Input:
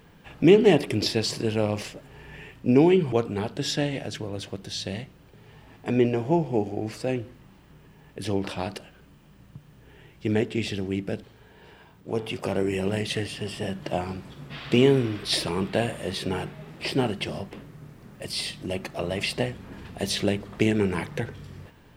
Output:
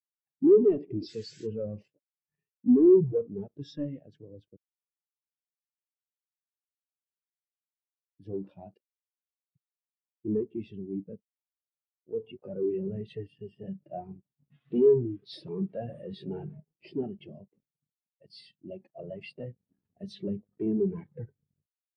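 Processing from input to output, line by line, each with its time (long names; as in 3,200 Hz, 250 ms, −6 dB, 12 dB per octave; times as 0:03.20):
0:01.08–0:01.47: sound drawn into the spectrogram noise 1,400–8,000 Hz −30 dBFS
0:04.57–0:08.19: silence
0:15.88–0:16.60: envelope flattener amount 50%
whole clip: high-pass filter 91 Hz 12 dB per octave; leveller curve on the samples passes 5; every bin expanded away from the loudest bin 2.5 to 1; level −7.5 dB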